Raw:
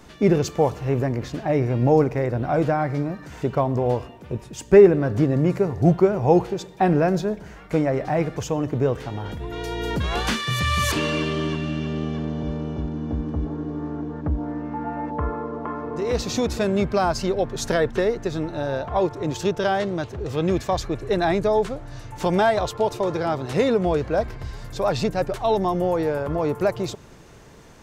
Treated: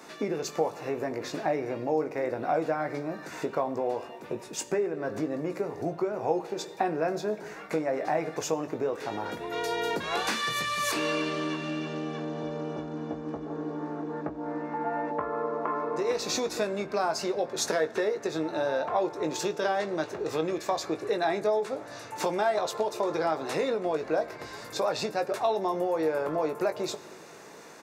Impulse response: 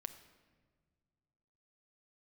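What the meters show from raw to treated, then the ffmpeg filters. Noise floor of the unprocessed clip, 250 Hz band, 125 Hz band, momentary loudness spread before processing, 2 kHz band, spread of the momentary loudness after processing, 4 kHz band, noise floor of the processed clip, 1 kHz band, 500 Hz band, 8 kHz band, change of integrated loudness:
-44 dBFS, -9.5 dB, -18.0 dB, 10 LU, -4.0 dB, 8 LU, -4.0 dB, -45 dBFS, -4.5 dB, -7.0 dB, -1.0 dB, -7.5 dB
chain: -filter_complex "[0:a]acompressor=threshold=-26dB:ratio=6,highpass=340,bandreject=f=3.1k:w=7.2,asplit=2[a][b];[b]adelay=19,volume=-8dB[c];[a][c]amix=inputs=2:normalize=0,asplit=2[d][e];[1:a]atrim=start_sample=2205[f];[e][f]afir=irnorm=-1:irlink=0,volume=1.5dB[g];[d][g]amix=inputs=2:normalize=0,volume=-2.5dB"

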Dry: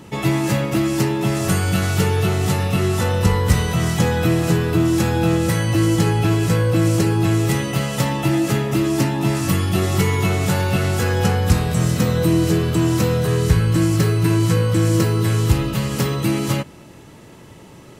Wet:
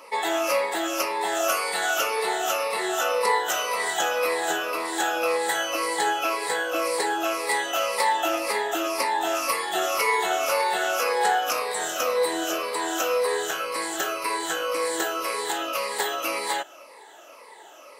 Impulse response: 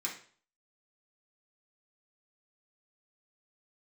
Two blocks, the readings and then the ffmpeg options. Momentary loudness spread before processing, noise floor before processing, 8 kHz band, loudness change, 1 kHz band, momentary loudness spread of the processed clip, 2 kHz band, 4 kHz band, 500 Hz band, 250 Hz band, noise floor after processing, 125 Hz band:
3 LU, -42 dBFS, -1.0 dB, -6.5 dB, +3.0 dB, 4 LU, +1.0 dB, -0.5 dB, -3.0 dB, -17.5 dB, -47 dBFS, under -40 dB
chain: -af "afftfilt=real='re*pow(10,13/40*sin(2*PI*(0.92*log(max(b,1)*sr/1024/100)/log(2)-(-1.9)*(pts-256)/sr)))':imag='im*pow(10,13/40*sin(2*PI*(0.92*log(max(b,1)*sr/1024/100)/log(2)-(-1.9)*(pts-256)/sr)))':win_size=1024:overlap=0.75,highpass=f=580:w=0.5412,highpass=f=580:w=1.3066,tiltshelf=f=1.3k:g=3.5"

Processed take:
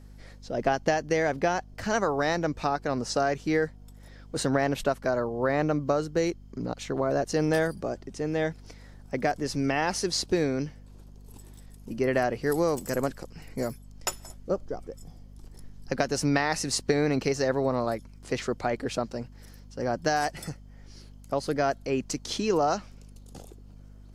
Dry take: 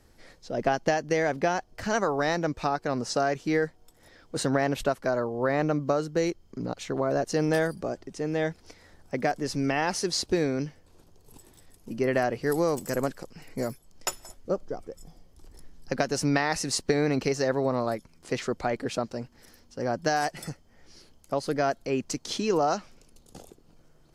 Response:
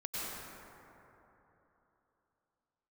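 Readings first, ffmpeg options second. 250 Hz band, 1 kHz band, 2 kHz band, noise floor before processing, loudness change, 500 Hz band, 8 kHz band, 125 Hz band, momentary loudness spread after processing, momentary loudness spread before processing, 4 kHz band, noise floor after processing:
0.0 dB, 0.0 dB, 0.0 dB, -59 dBFS, 0.0 dB, 0.0 dB, 0.0 dB, 0.0 dB, 11 LU, 11 LU, 0.0 dB, -49 dBFS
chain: -af "aeval=exprs='val(0)+0.00447*(sin(2*PI*50*n/s)+sin(2*PI*2*50*n/s)/2+sin(2*PI*3*50*n/s)/3+sin(2*PI*4*50*n/s)/4+sin(2*PI*5*50*n/s)/5)':c=same"

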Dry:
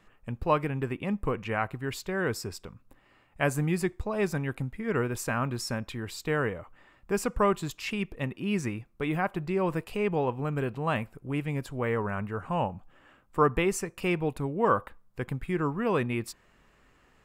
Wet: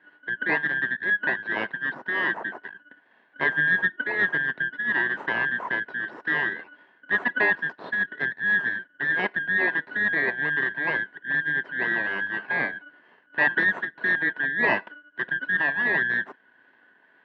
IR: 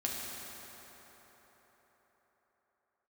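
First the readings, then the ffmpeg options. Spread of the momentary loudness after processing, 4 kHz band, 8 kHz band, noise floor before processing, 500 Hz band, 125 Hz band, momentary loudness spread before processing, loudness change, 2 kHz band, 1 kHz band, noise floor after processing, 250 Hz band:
7 LU, +2.0 dB, under -30 dB, -63 dBFS, -6.0 dB, -12.5 dB, 9 LU, +5.5 dB, +16.0 dB, -2.0 dB, -61 dBFS, -6.5 dB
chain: -filter_complex "[0:a]afftfilt=real='real(if(lt(b,272),68*(eq(floor(b/68),0)*3+eq(floor(b/68),1)*0+eq(floor(b/68),2)*1+eq(floor(b/68),3)*2)+mod(b,68),b),0)':imag='imag(if(lt(b,272),68*(eq(floor(b/68),0)*3+eq(floor(b/68),1)*0+eq(floor(b/68),2)*1+eq(floor(b/68),3)*2)+mod(b,68),b),0)':win_size=2048:overlap=0.75,acrossover=split=1700[a][b];[a]aeval=exprs='val(0)*(1-0.5/2+0.5/2*cos(2*PI*2*n/s))':c=same[c];[b]aeval=exprs='val(0)*(1-0.5/2-0.5/2*cos(2*PI*2*n/s))':c=same[d];[c][d]amix=inputs=2:normalize=0,aeval=exprs='max(val(0),0)':c=same,asplit=2[e][f];[f]acrusher=samples=25:mix=1:aa=0.000001,volume=-10dB[g];[e][g]amix=inputs=2:normalize=0,apsyclip=14.5dB,highpass=f=170:w=0.5412,highpass=f=170:w=1.3066,equalizer=f=170:t=q:w=4:g=-3,equalizer=f=390:t=q:w=4:g=5,equalizer=f=660:t=q:w=4:g=4,equalizer=f=970:t=q:w=4:g=9,equalizer=f=1.7k:t=q:w=4:g=9,equalizer=f=2.4k:t=q:w=4:g=-9,lowpass=f=2.5k:w=0.5412,lowpass=f=2.5k:w=1.3066,volume=-7.5dB"

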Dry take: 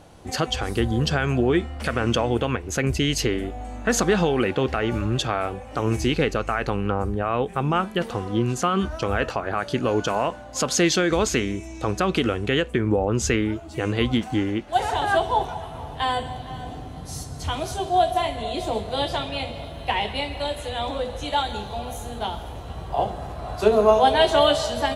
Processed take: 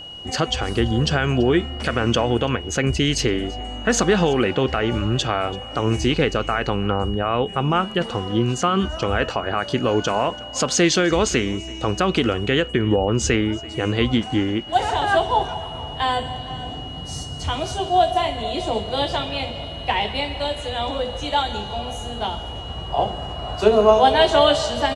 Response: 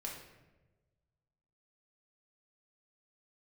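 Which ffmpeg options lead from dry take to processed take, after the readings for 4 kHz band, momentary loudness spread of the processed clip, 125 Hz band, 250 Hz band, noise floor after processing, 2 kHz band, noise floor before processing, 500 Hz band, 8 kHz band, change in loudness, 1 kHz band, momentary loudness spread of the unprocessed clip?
+4.5 dB, 10 LU, +2.5 dB, +2.5 dB, -33 dBFS, +2.5 dB, -37 dBFS, +2.5 dB, +2.0 dB, +2.5 dB, +2.5 dB, 11 LU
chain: -af "lowpass=f=8.8k:w=0.5412,lowpass=f=8.8k:w=1.3066,aeval=exprs='val(0)+0.0141*sin(2*PI*2900*n/s)':c=same,aecho=1:1:335:0.075,volume=2.5dB"

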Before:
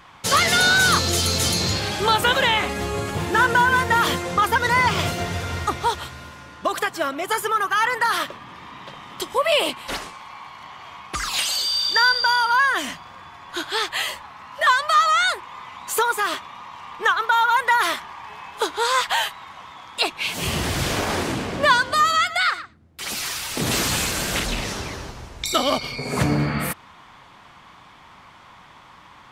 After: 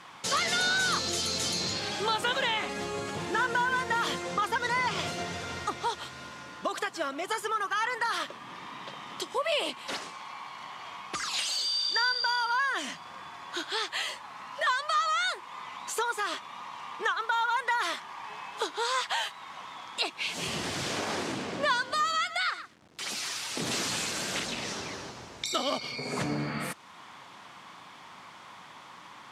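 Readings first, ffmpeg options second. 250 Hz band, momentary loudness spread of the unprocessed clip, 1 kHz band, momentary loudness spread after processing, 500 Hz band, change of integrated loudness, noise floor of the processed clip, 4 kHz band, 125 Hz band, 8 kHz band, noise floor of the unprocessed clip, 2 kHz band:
-9.5 dB, 21 LU, -9.5 dB, 16 LU, -9.0 dB, -9.5 dB, -49 dBFS, -8.0 dB, -14.5 dB, -8.5 dB, -48 dBFS, -9.5 dB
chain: -af "bass=f=250:g=0,treble=f=4k:g=4,acompressor=threshold=-39dB:ratio=1.5,acrusher=bits=8:mix=0:aa=0.000001,highpass=160,lowpass=7.3k,volume=-1.5dB"

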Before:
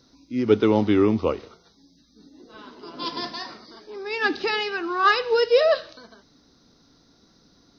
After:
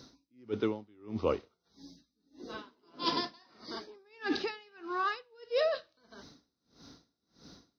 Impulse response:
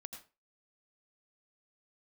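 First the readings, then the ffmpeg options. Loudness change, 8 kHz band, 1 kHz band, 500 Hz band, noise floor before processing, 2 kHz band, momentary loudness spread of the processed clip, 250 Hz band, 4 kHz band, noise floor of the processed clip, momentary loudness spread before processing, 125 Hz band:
-13.0 dB, n/a, -11.0 dB, -13.0 dB, -60 dBFS, -14.5 dB, 21 LU, -14.0 dB, -9.5 dB, -83 dBFS, 16 LU, -14.5 dB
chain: -af "highpass=45,areverse,acompressor=threshold=-29dB:ratio=16,areverse,aeval=exprs='val(0)*pow(10,-33*(0.5-0.5*cos(2*PI*1.6*n/s))/20)':c=same,volume=5.5dB"

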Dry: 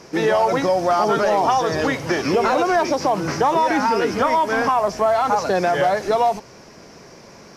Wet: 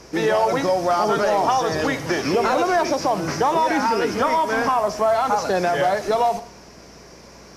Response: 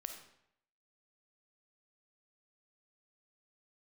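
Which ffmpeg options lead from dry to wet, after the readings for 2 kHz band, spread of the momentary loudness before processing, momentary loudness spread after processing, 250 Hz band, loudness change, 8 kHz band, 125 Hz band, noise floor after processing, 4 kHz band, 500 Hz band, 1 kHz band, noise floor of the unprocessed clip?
-1.0 dB, 3 LU, 3 LU, -1.5 dB, -1.5 dB, +1.0 dB, -1.5 dB, -45 dBFS, 0.0 dB, -1.5 dB, -1.5 dB, -44 dBFS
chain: -filter_complex "[0:a]aeval=exprs='val(0)+0.00282*(sin(2*PI*60*n/s)+sin(2*PI*2*60*n/s)/2+sin(2*PI*3*60*n/s)/3+sin(2*PI*4*60*n/s)/4+sin(2*PI*5*60*n/s)/5)':c=same,asplit=2[a][b];[1:a]atrim=start_sample=2205,highshelf=f=4.6k:g=9.5[c];[b][c]afir=irnorm=-1:irlink=0,volume=-2.5dB[d];[a][d]amix=inputs=2:normalize=0,volume=-5dB" -ar 48000 -c:a libopus -b:a 96k

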